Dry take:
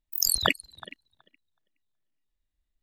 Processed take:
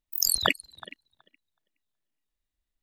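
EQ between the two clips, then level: low shelf 140 Hz -5.5 dB; 0.0 dB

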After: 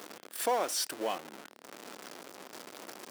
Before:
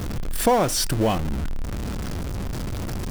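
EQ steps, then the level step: Bessel high-pass 470 Hz, order 4; -8.5 dB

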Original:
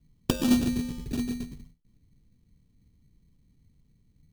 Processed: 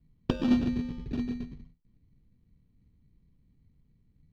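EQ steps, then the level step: air absorption 250 m; -1.5 dB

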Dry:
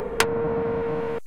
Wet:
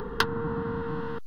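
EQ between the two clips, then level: high shelf 8500 Hz -7 dB; fixed phaser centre 2300 Hz, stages 6; 0.0 dB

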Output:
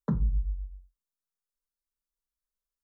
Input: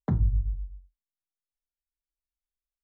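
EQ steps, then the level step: fixed phaser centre 480 Hz, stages 8; +1.5 dB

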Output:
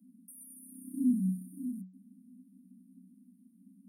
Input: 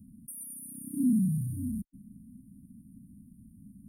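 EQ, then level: rippled Chebyshev high-pass 180 Hz, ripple 9 dB; 0.0 dB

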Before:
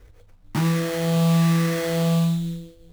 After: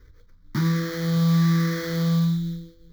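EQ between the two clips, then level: notches 50/100 Hz; fixed phaser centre 2700 Hz, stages 6; 0.0 dB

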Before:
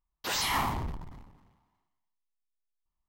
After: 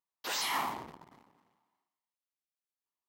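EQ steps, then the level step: HPF 290 Hz 12 dB/oct; -3.5 dB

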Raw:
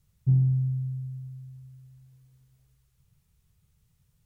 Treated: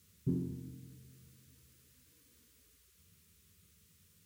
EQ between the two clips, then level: HPF 86 Hz 24 dB/oct; fixed phaser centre 310 Hz, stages 4; +10.0 dB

